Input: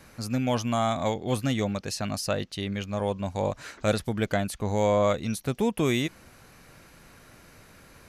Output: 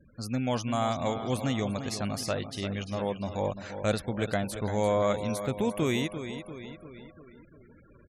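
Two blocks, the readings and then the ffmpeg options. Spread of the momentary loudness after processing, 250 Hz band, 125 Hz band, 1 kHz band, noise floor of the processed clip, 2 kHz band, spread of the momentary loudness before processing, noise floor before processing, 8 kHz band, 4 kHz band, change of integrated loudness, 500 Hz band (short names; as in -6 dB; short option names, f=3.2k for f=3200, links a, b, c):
11 LU, -2.5 dB, -2.5 dB, -2.5 dB, -56 dBFS, -2.5 dB, 7 LU, -54 dBFS, -3.0 dB, -2.5 dB, -2.5 dB, -2.5 dB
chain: -af "aecho=1:1:344|688|1032|1376|1720|2064:0.316|0.177|0.0992|0.0555|0.0311|0.0174,afftfilt=real='re*gte(hypot(re,im),0.00631)':imag='im*gte(hypot(re,im),0.00631)':win_size=1024:overlap=0.75,volume=-3dB"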